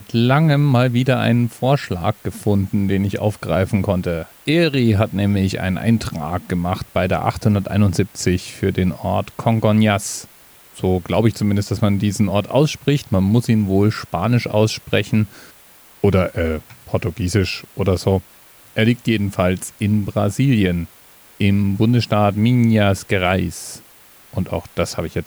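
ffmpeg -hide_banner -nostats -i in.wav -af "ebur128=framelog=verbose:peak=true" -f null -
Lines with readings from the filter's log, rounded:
Integrated loudness:
  I:         -18.5 LUFS
  Threshold: -28.8 LUFS
Loudness range:
  LRA:         2.8 LU
  Threshold: -38.9 LUFS
  LRA low:   -20.2 LUFS
  LRA high:  -17.5 LUFS
True peak:
  Peak:       -3.1 dBFS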